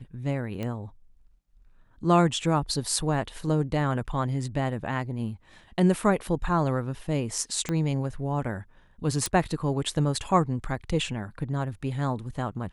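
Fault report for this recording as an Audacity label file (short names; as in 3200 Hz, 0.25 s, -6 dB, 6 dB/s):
0.630000	0.630000	pop -20 dBFS
7.690000	7.690000	pop -15 dBFS
9.260000	9.260000	pop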